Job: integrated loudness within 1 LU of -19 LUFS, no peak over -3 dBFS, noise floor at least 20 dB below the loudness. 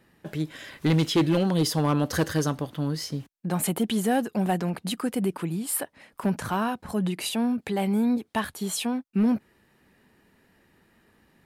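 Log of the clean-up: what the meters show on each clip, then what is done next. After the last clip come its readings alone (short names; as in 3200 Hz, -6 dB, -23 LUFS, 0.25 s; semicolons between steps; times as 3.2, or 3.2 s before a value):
clipped 0.8%; flat tops at -16.5 dBFS; loudness -27.0 LUFS; peak -16.5 dBFS; loudness target -19.0 LUFS
-> clip repair -16.5 dBFS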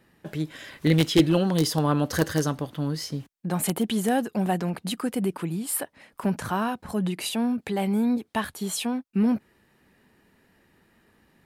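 clipped 0.0%; loudness -26.0 LUFS; peak -7.5 dBFS; loudness target -19.0 LUFS
-> gain +7 dB; limiter -3 dBFS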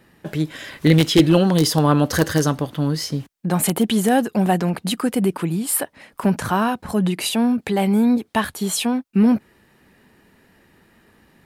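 loudness -19.5 LUFS; peak -3.0 dBFS; noise floor -59 dBFS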